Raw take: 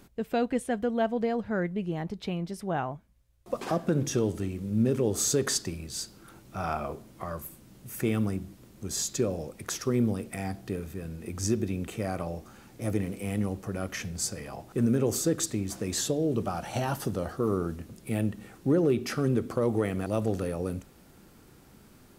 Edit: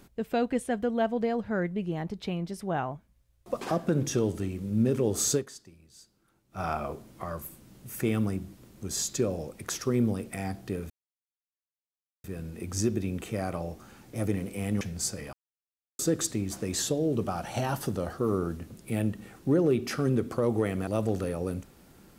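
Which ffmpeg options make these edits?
ffmpeg -i in.wav -filter_complex "[0:a]asplit=7[link_01][link_02][link_03][link_04][link_05][link_06][link_07];[link_01]atrim=end=5.48,asetpts=PTS-STARTPTS,afade=type=out:start_time=5.36:duration=0.12:curve=qua:silence=0.11885[link_08];[link_02]atrim=start=5.48:end=6.48,asetpts=PTS-STARTPTS,volume=-18.5dB[link_09];[link_03]atrim=start=6.48:end=10.9,asetpts=PTS-STARTPTS,afade=type=in:duration=0.12:curve=qua:silence=0.11885,afade=type=out:start_time=4.416:duration=0.004:curve=hsin,apad=pad_dur=1.34[link_10];[link_04]atrim=start=10.9:end=13.472,asetpts=PTS-STARTPTS,afade=type=in:duration=0.004:curve=hsin[link_11];[link_05]atrim=start=13.998:end=14.52,asetpts=PTS-STARTPTS,afade=type=out:start_time=0.518:duration=0.004:curve=hsin[link_12];[link_06]atrim=start=14.52:end=15.18,asetpts=PTS-STARTPTS,volume=0[link_13];[link_07]atrim=start=15.18,asetpts=PTS-STARTPTS,afade=type=in:duration=0.004:curve=hsin[link_14];[link_08][link_09][link_10][link_11]concat=n=4:v=0:a=1[link_15];[link_12][link_13][link_14]concat=n=3:v=0:a=1[link_16];[link_15][link_16]acrossfade=duration=0.004:curve1=hsin:curve2=hsin" out.wav

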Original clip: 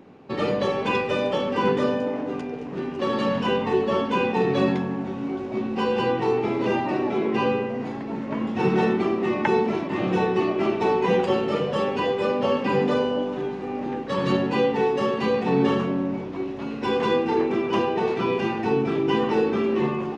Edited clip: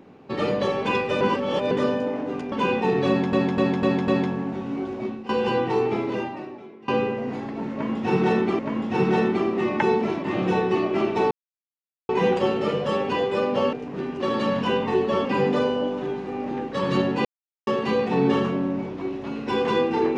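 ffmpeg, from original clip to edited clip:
ffmpeg -i in.wav -filter_complex "[0:a]asplit=16[link_01][link_02][link_03][link_04][link_05][link_06][link_07][link_08][link_09][link_10][link_11][link_12][link_13][link_14][link_15][link_16];[link_01]atrim=end=1.212[link_17];[link_02]atrim=start=1.208:end=1.712,asetpts=PTS-STARTPTS,areverse[link_18];[link_03]atrim=start=1.708:end=2.522[link_19];[link_04]atrim=start=4.038:end=4.852[link_20];[link_05]atrim=start=4.598:end=4.852[link_21];[link_06]atrim=start=4.598:end=4.852[link_22];[link_07]atrim=start=4.598:end=4.852[link_23];[link_08]atrim=start=4.598:end=5.81,asetpts=PTS-STARTPTS,afade=type=out:start_time=0.892:duration=0.32:silence=0.158489[link_24];[link_09]atrim=start=5.81:end=7.4,asetpts=PTS-STARTPTS,afade=type=in:duration=0.004:curve=hsin:silence=0.158489,afade=type=out:start_time=0.66:duration=0.93:curve=qua:silence=0.0668344[link_25];[link_10]atrim=start=7.4:end=9.112,asetpts=PTS-STARTPTS,afade=type=in:duration=0.004:curve=hsin:silence=0.0668344[link_26];[link_11]atrim=start=8.238:end=10.96,asetpts=PTS-STARTPTS,afade=type=out:start_time=2.718:duration=0.004:curve=hsin,apad=pad_dur=0.78[link_27];[link_12]atrim=start=10.96:end=12.602,asetpts=PTS-STARTPTS,afade=type=in:duration=0.004:curve=hsin[link_28];[link_13]atrim=start=2.518:end=4.042[link_29];[link_14]atrim=start=12.598:end=14.6,asetpts=PTS-STARTPTS,afade=type=out:start_time=1.998:duration=0.004:curve=hsin[link_30];[link_15]atrim=start=14.6:end=15.02,asetpts=PTS-STARTPTS,volume=0[link_31];[link_16]atrim=start=15.02,asetpts=PTS-STARTPTS,afade=type=in:duration=0.004:curve=hsin[link_32];[link_17][link_18]acrossfade=duration=0.004:curve1=hsin:curve2=hsin[link_33];[link_33][link_19]acrossfade=duration=0.004:curve1=hsin:curve2=hsin[link_34];[link_34][link_20]acrossfade=duration=0.004:curve1=hsin:curve2=hsin[link_35];[link_35][link_21]acrossfade=duration=0.004:curve1=hsin:curve2=hsin[link_36];[link_36][link_22]acrossfade=duration=0.004:curve1=hsin:curve2=hsin[link_37];[link_37][link_23]acrossfade=duration=0.004:curve1=hsin:curve2=hsin[link_38];[link_24][link_25][link_26]concat=n=3:v=0:a=1[link_39];[link_38][link_39]acrossfade=duration=0.004:curve1=hsin:curve2=hsin[link_40];[link_27][link_28]concat=n=2:v=0:a=1[link_41];[link_40][link_41]acrossfade=duration=0.004:curve1=hsin:curve2=hsin[link_42];[link_42][link_29]acrossfade=duration=0.004:curve1=hsin:curve2=hsin[link_43];[link_30][link_31][link_32]concat=n=3:v=0:a=1[link_44];[link_43][link_44]acrossfade=duration=0.004:curve1=hsin:curve2=hsin" out.wav

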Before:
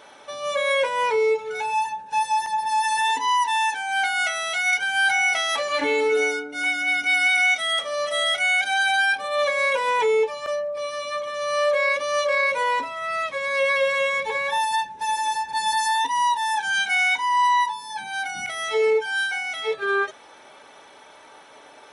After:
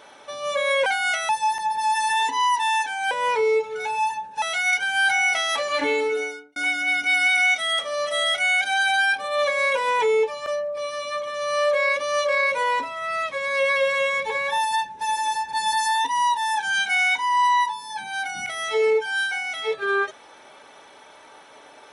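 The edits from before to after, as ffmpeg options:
ffmpeg -i in.wav -filter_complex "[0:a]asplit=6[link_01][link_02][link_03][link_04][link_05][link_06];[link_01]atrim=end=0.862[link_07];[link_02]atrim=start=3.988:end=4.422[link_08];[link_03]atrim=start=2.168:end=3.992[link_09];[link_04]atrim=start=0.858:end=2.172[link_10];[link_05]atrim=start=4.418:end=6.56,asetpts=PTS-STARTPTS,afade=type=out:start_time=1.472:duration=0.67[link_11];[link_06]atrim=start=6.56,asetpts=PTS-STARTPTS,afade=type=in:duration=0.004:curve=hsin[link_12];[link_07][link_08]acrossfade=duration=0.004:curve1=hsin:curve2=hsin[link_13];[link_13][link_09]acrossfade=duration=0.004:curve1=hsin:curve2=hsin[link_14];[link_14][link_10]acrossfade=duration=0.004:curve1=hsin:curve2=hsin[link_15];[link_11][link_12]concat=n=2:v=0:a=1[link_16];[link_15][link_16]acrossfade=duration=0.004:curve1=hsin:curve2=hsin" out.wav

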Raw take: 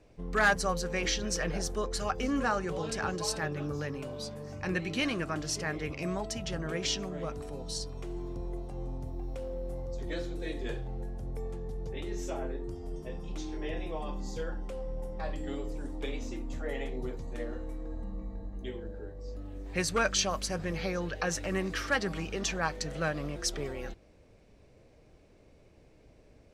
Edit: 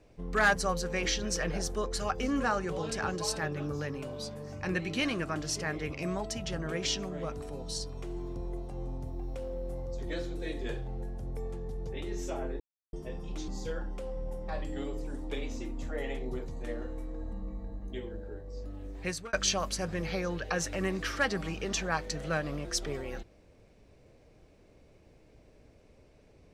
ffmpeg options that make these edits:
ffmpeg -i in.wav -filter_complex "[0:a]asplit=5[link_01][link_02][link_03][link_04][link_05];[link_01]atrim=end=12.6,asetpts=PTS-STARTPTS,afade=type=out:start_time=12.596:duration=0.004:curve=hsin[link_06];[link_02]atrim=start=12.6:end=12.93,asetpts=PTS-STARTPTS,volume=0[link_07];[link_03]atrim=start=12.93:end=13.482,asetpts=PTS-STARTPTS,afade=type=in:duration=0.004:curve=hsin[link_08];[link_04]atrim=start=14.188:end=20.04,asetpts=PTS-STARTPTS,afade=type=out:start_time=5.322:duration=0.53:curve=qsin[link_09];[link_05]atrim=start=20.04,asetpts=PTS-STARTPTS,afade=type=in:duration=0.004:curve=hsin[link_10];[link_06][link_07][link_08]concat=n=3:v=0:a=1[link_11];[link_09][link_10]concat=n=2:v=0:a=1[link_12];[link_11][link_12]acrossfade=duration=0.004:curve1=hsin:curve2=hsin" out.wav

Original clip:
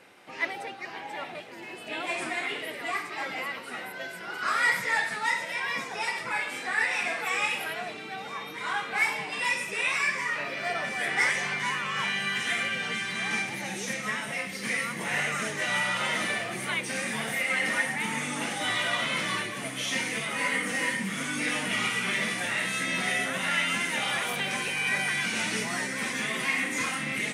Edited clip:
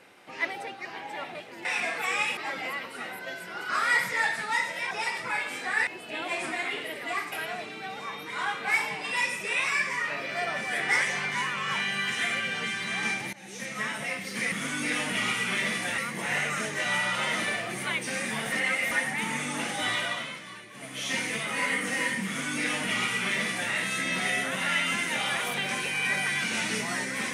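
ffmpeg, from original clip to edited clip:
ffmpeg -i in.wav -filter_complex "[0:a]asplit=13[link_01][link_02][link_03][link_04][link_05][link_06][link_07][link_08][link_09][link_10][link_11][link_12][link_13];[link_01]atrim=end=1.652[link_14];[link_02]atrim=start=6.878:end=7.602[link_15];[link_03]atrim=start=3.098:end=5.642[link_16];[link_04]atrim=start=5.918:end=6.882[link_17];[link_05]atrim=start=1.648:end=3.102[link_18];[link_06]atrim=start=7.598:end=13.61,asetpts=PTS-STARTPTS,afade=type=out:start_time=6.008:duration=0.004:curve=hsin:silence=0.1[link_19];[link_07]atrim=start=13.61:end=14.802,asetpts=PTS-STARTPTS,afade=type=in:duration=0.54:silence=0.1[link_20];[link_08]atrim=start=21.078:end=22.542[link_21];[link_09]atrim=start=14.798:end=17.342[link_22];[link_10]atrim=start=17.338:end=17.732,asetpts=PTS-STARTPTS,areverse[link_23];[link_11]atrim=start=17.728:end=19.22,asetpts=PTS-STARTPTS,afade=type=out:start_time=1.012:duration=0.48:silence=0.211349[link_24];[link_12]atrim=start=19.22:end=19.51,asetpts=PTS-STARTPTS,volume=-13.5dB[link_25];[link_13]atrim=start=19.51,asetpts=PTS-STARTPTS,afade=type=in:duration=0.48:silence=0.211349[link_26];[link_14][link_15]acrossfade=duration=0.004:curve1=hsin:curve2=hsin[link_27];[link_27][link_16]acrossfade=duration=0.004:curve1=hsin:curve2=hsin[link_28];[link_28][link_17]acrossfade=duration=0.004:curve1=hsin:curve2=hsin[link_29];[link_29][link_18]acrossfade=duration=0.004:curve1=hsin:curve2=hsin[link_30];[link_19][link_20]concat=n=2:v=0:a=1[link_31];[link_30][link_31]acrossfade=duration=0.004:curve1=hsin:curve2=hsin[link_32];[link_32][link_21]acrossfade=duration=0.004:curve1=hsin:curve2=hsin[link_33];[link_33][link_22]acrossfade=duration=0.004:curve1=hsin:curve2=hsin[link_34];[link_34][link_23]acrossfade=duration=0.004:curve1=hsin:curve2=hsin[link_35];[link_24][link_25][link_26]concat=n=3:v=0:a=1[link_36];[link_35][link_36]acrossfade=duration=0.004:curve1=hsin:curve2=hsin" out.wav

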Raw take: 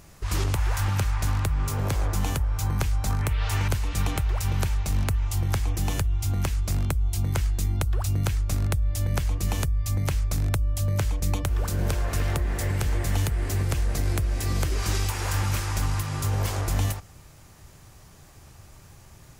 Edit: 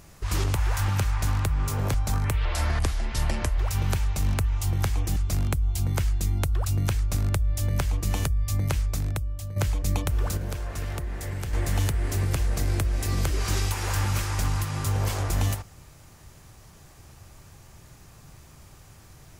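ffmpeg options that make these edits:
ffmpeg -i in.wav -filter_complex "[0:a]asplit=8[link_01][link_02][link_03][link_04][link_05][link_06][link_07][link_08];[link_01]atrim=end=1.942[link_09];[link_02]atrim=start=2.908:end=3.424[link_10];[link_03]atrim=start=3.42:end=4.28,asetpts=PTS-STARTPTS,asetrate=33516,aresample=44100[link_11];[link_04]atrim=start=4.276:end=5.862[link_12];[link_05]atrim=start=6.538:end=10.94,asetpts=PTS-STARTPTS,afade=type=out:start_time=3.602:duration=0.8:silence=0.251189[link_13];[link_06]atrim=start=10.94:end=11.752,asetpts=PTS-STARTPTS,afade=type=in:duration=0.004:curve=hsin:silence=0.251189[link_14];[link_07]atrim=start=11.748:end=12.912,asetpts=PTS-STARTPTS,volume=-6dB[link_15];[link_08]atrim=start=12.908[link_16];[link_09][link_10]acrossfade=duration=0.004:curve1=hsin:curve2=hsin[link_17];[link_17][link_11]acrossfade=duration=0.004:curve1=hsin:curve2=hsin[link_18];[link_18][link_12]acrossfade=duration=0.004:curve1=hsin:curve2=hsin[link_19];[link_13][link_14]concat=n=2:v=0:a=1[link_20];[link_19][link_20]acrossfade=duration=0.004:curve1=hsin:curve2=hsin[link_21];[link_21][link_15]acrossfade=duration=0.004:curve1=hsin:curve2=hsin[link_22];[link_22][link_16]acrossfade=duration=0.004:curve1=hsin:curve2=hsin" out.wav

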